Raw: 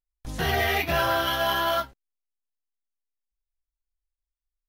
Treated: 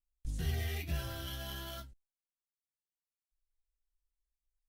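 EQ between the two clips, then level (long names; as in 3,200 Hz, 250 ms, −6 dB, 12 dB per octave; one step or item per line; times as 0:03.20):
guitar amp tone stack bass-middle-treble 10-0-1
parametric band 8,300 Hz +9.5 dB 0.71 octaves
+6.0 dB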